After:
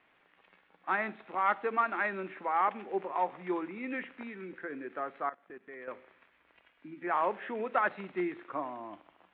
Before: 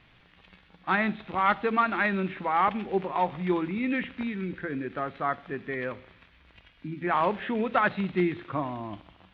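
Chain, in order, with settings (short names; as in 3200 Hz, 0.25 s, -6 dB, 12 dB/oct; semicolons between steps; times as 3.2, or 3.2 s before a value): three-band isolator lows -23 dB, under 280 Hz, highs -18 dB, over 2600 Hz; 5.29–5.88 level quantiser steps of 21 dB; gain -4 dB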